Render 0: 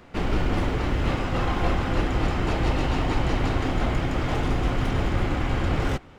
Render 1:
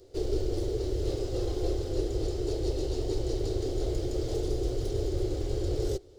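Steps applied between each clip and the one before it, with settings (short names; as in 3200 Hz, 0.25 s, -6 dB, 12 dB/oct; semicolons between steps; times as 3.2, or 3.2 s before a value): EQ curve 110 Hz 0 dB, 210 Hz -22 dB, 390 Hz +12 dB, 1000 Hz -19 dB, 2500 Hz -16 dB, 4400 Hz +6 dB; vocal rider; gain -6.5 dB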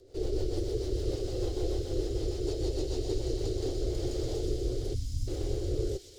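spectral delete 4.94–5.28, 280–4800 Hz; rotary speaker horn 6.7 Hz, later 0.85 Hz, at 3.14; thin delay 0.124 s, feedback 82%, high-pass 2800 Hz, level -5 dB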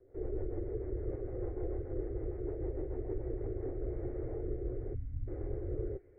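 steep low-pass 2100 Hz 72 dB/oct; gain -6 dB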